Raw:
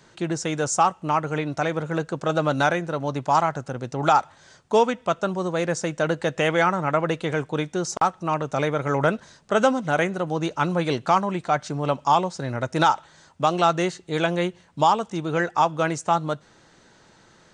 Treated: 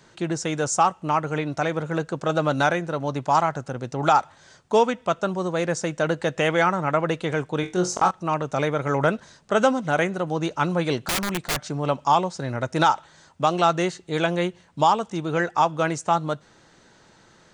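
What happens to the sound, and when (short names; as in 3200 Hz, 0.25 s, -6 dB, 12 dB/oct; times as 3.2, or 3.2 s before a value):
7.61–8.11 flutter echo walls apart 3.8 m, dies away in 0.24 s
11.03–11.67 wrapped overs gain 19 dB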